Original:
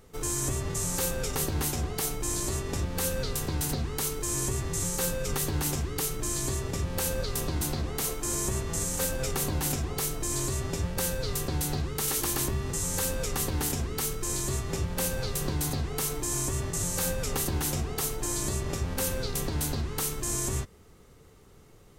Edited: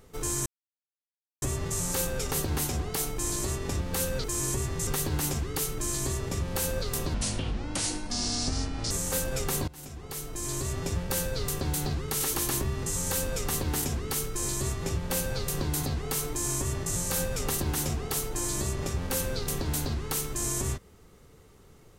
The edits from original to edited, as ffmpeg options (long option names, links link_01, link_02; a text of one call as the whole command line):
ffmpeg -i in.wav -filter_complex "[0:a]asplit=7[link_01][link_02][link_03][link_04][link_05][link_06][link_07];[link_01]atrim=end=0.46,asetpts=PTS-STARTPTS,afade=type=out:start_time=0.456:duration=0.004:curve=hsin,apad=pad_dur=0.96[link_08];[link_02]atrim=start=0.46:end=3.282,asetpts=PTS-STARTPTS,afade=type=in:duration=0.004:curve=hsin[link_09];[link_03]atrim=start=4.178:end=4.812[link_10];[link_04]atrim=start=5.288:end=7.564[link_11];[link_05]atrim=start=7.56:end=8.78,asetpts=PTS-STARTPTS,asetrate=30429,aresample=44100[link_12];[link_06]atrim=start=8.776:end=9.55,asetpts=PTS-STARTPTS,afade=type=out:start_time=0.77:duration=0.004:curve=hsin:silence=0.0707946[link_13];[link_07]atrim=start=9.55,asetpts=PTS-STARTPTS,afade=type=in:duration=1.16:silence=0.0707946[link_14];[link_08][link_09]concat=n=2:v=0:a=1[link_15];[link_15][link_10]acrossfade=duration=0.004:curve1=hsin:curve2=hsin[link_16];[link_16][link_11]acrossfade=duration=0.004:curve1=hsin:curve2=hsin[link_17];[link_17][link_12]acrossfade=duration=0.004:curve1=hsin:curve2=hsin[link_18];[link_13][link_14]concat=n=2:v=0:a=1[link_19];[link_18][link_19]acrossfade=duration=0.004:curve1=hsin:curve2=hsin" out.wav